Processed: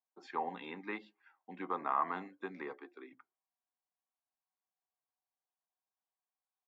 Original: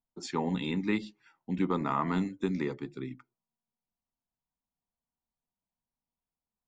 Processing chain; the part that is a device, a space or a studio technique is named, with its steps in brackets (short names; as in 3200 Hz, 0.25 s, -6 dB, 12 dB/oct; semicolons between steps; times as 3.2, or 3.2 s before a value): 2.73–3.13 steep high-pass 240 Hz 36 dB/oct; tin-can telephone (BPF 540–2100 Hz; small resonant body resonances 760/1100/1600 Hz, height 9 dB); gain -3.5 dB